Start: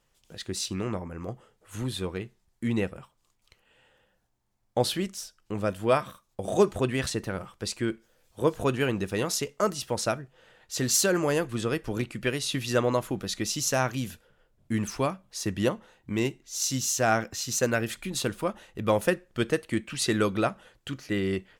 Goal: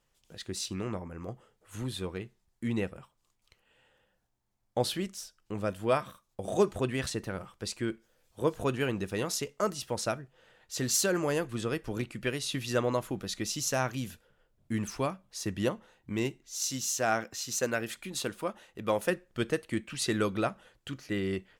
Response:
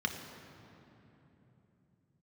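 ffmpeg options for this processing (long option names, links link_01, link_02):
-filter_complex "[0:a]asettb=1/sr,asplit=3[link_01][link_02][link_03];[link_01]atrim=end=16.554[link_04];[link_02]atrim=start=16.55:end=19.1,asetpts=PTS-STARTPTS,afade=type=in:duration=0.004:curve=qsin,afade=type=out:start_time=2.546:duration=0.004:curve=qsin,lowshelf=frequency=130:gain=-11[link_05];[link_03]atrim=start=19.096[link_06];[link_04][link_05]acrossfade=duration=0.004:curve1=hsin:curve2=qsin[link_07];[link_07][link_06]acrossfade=duration=0.004:curve1=qsin:curve2=hsin,volume=-4dB"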